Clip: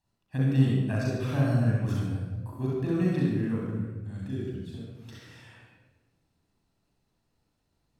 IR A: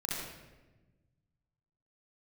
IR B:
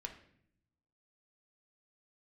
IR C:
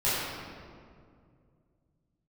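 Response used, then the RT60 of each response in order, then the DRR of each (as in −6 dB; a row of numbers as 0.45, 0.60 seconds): A; 1.2, 0.65, 2.2 seconds; −5.0, 2.5, −12.0 decibels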